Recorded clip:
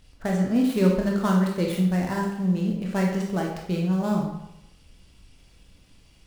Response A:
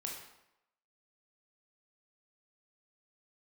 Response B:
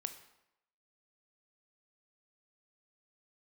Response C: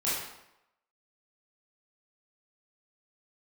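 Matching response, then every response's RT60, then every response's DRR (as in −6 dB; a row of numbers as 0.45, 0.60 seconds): A; 0.85, 0.85, 0.85 seconds; −1.0, 8.5, −9.5 decibels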